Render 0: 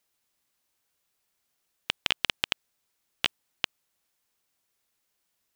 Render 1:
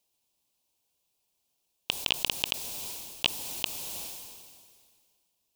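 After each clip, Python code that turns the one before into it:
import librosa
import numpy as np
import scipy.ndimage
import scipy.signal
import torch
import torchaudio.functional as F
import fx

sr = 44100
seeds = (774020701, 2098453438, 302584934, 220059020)

y = fx.band_shelf(x, sr, hz=1600.0, db=-12.5, octaves=1.0)
y = fx.sustainer(y, sr, db_per_s=30.0)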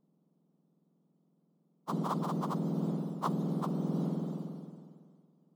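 y = fx.octave_mirror(x, sr, pivot_hz=1800.0)
y = fx.rider(y, sr, range_db=5, speed_s=0.5)
y = y * 10.0 ** (-5.5 / 20.0)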